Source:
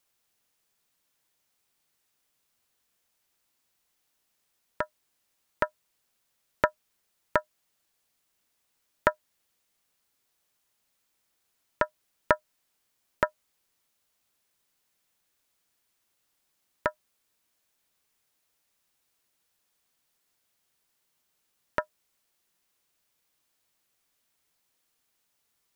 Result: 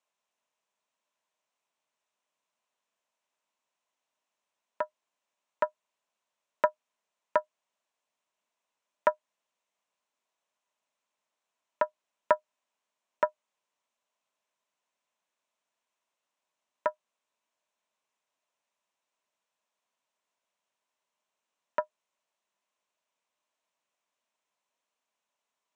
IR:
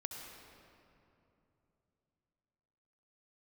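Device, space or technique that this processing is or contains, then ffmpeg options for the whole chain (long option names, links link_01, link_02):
television speaker: -af "highpass=frequency=160:width=0.5412,highpass=frequency=160:width=1.3066,equalizer=frequency=160:width_type=q:width=4:gain=-5,equalizer=frequency=330:width_type=q:width=4:gain=-4,equalizer=frequency=620:width_type=q:width=4:gain=9,equalizer=frequency=1000:width_type=q:width=4:gain=10,equalizer=frequency=2600:width_type=q:width=4:gain=3,equalizer=frequency=4700:width_type=q:width=4:gain=-7,lowpass=frequency=7700:width=0.5412,lowpass=frequency=7700:width=1.3066,volume=-8dB"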